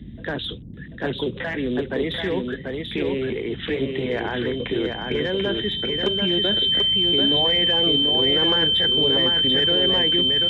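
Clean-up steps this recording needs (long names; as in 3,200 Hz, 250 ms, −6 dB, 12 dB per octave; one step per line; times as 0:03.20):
notch filter 3,100 Hz, Q 30
noise reduction from a noise print 30 dB
echo removal 738 ms −4 dB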